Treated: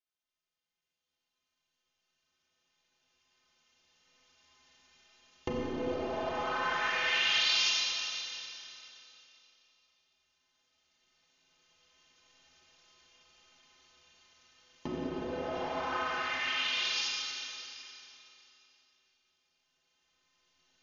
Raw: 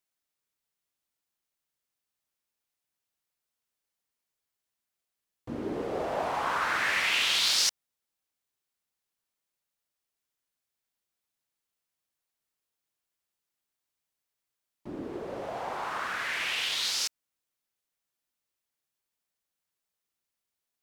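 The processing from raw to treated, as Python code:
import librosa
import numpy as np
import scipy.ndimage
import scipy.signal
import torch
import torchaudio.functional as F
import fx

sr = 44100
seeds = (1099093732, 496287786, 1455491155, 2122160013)

p1 = fx.recorder_agc(x, sr, target_db=-21.0, rise_db_per_s=6.4, max_gain_db=30)
p2 = fx.brickwall_lowpass(p1, sr, high_hz=7100.0)
p3 = fx.peak_eq(p2, sr, hz=3000.0, db=6.0, octaves=0.51)
p4 = fx.hum_notches(p3, sr, base_hz=50, count=3)
p5 = fx.stiff_resonator(p4, sr, f0_hz=76.0, decay_s=0.22, stiffness=0.03)
p6 = p5 + fx.echo_filtered(p5, sr, ms=352, feedback_pct=54, hz=2100.0, wet_db=-15.5, dry=0)
p7 = fx.rev_schroeder(p6, sr, rt60_s=3.0, comb_ms=30, drr_db=-3.0)
y = F.gain(torch.from_numpy(p7), -2.5).numpy()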